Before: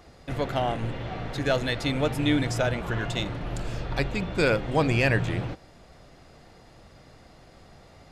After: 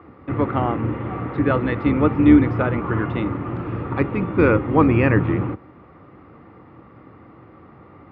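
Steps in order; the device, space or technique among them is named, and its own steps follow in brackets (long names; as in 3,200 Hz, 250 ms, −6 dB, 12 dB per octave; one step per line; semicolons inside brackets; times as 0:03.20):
sub-octave bass pedal (sub-octave generator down 2 octaves, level +2 dB; loudspeaker in its box 88–2,000 Hz, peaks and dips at 150 Hz −4 dB, 310 Hz +7 dB, 660 Hz −10 dB, 1,200 Hz +8 dB, 1,600 Hz −7 dB)
level +7 dB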